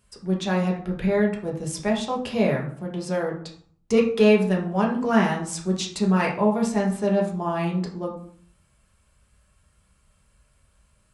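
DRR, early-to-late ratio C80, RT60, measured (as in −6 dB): −2.5 dB, 11.5 dB, 0.55 s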